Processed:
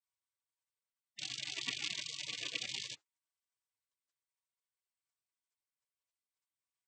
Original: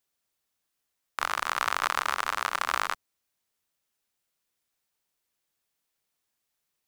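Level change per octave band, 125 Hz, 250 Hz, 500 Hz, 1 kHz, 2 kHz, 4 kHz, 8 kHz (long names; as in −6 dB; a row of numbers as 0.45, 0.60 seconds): can't be measured, −6.5 dB, −18.5 dB, −33.0 dB, −14.5 dB, −2.0 dB, −5.5 dB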